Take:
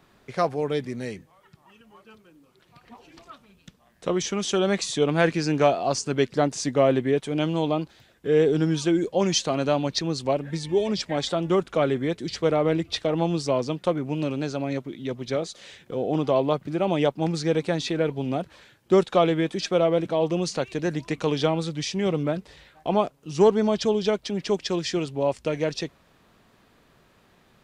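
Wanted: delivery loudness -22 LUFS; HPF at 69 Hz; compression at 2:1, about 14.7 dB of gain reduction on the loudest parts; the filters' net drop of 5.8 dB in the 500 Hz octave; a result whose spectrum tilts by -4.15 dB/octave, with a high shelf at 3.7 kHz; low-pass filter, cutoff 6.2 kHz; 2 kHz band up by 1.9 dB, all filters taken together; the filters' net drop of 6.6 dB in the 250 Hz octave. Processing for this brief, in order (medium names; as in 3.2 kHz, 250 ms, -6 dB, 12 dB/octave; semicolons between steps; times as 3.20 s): high-pass 69 Hz; low-pass 6.2 kHz; peaking EQ 250 Hz -8 dB; peaking EQ 500 Hz -5 dB; peaking EQ 2 kHz +5 dB; treble shelf 3.7 kHz -8 dB; compression 2:1, threshold -46 dBFS; trim +19.5 dB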